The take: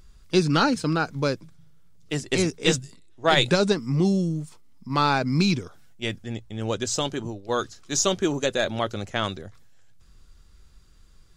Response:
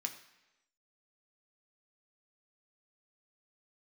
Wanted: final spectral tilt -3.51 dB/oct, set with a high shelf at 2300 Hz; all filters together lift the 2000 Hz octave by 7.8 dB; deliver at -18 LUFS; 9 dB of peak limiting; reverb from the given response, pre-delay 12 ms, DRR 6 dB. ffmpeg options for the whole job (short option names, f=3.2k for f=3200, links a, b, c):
-filter_complex "[0:a]equalizer=f=2k:t=o:g=8,highshelf=f=2.3k:g=4.5,alimiter=limit=-10dB:level=0:latency=1,asplit=2[a][b];[1:a]atrim=start_sample=2205,adelay=12[c];[b][c]afir=irnorm=-1:irlink=0,volume=-5.5dB[d];[a][d]amix=inputs=2:normalize=0,volume=5.5dB"